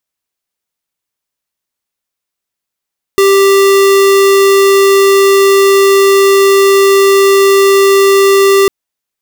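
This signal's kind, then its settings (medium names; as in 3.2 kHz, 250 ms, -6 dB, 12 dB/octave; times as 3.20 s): tone square 393 Hz -6.5 dBFS 5.50 s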